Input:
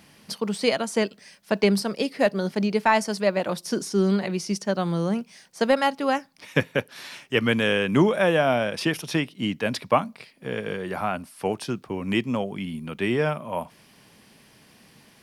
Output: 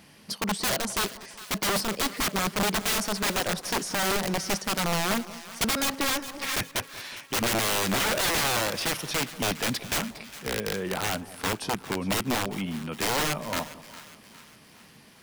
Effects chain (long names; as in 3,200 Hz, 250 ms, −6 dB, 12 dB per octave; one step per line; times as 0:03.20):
wrap-around overflow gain 20.5 dB
echo with a time of its own for lows and highs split 1,000 Hz, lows 186 ms, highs 408 ms, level −15.5 dB
0:05.62–0:06.56: multiband upward and downward compressor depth 100%